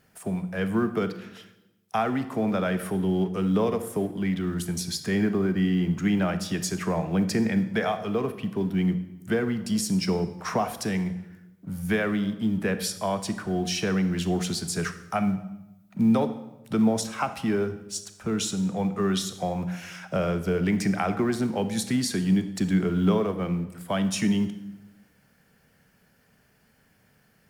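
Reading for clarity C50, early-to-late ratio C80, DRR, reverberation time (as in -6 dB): 12.0 dB, 14.5 dB, 10.5 dB, 1.0 s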